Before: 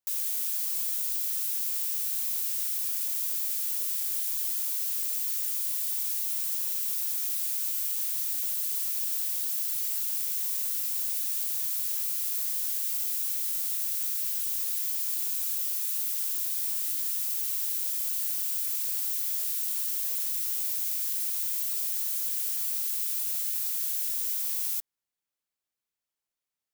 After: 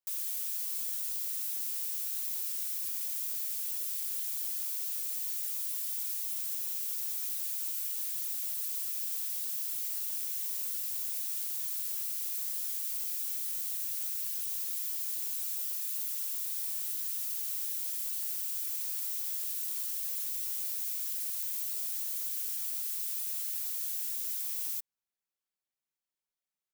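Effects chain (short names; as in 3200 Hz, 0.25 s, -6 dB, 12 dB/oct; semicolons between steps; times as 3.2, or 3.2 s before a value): comb 5.3 ms, depth 47%; gain -6 dB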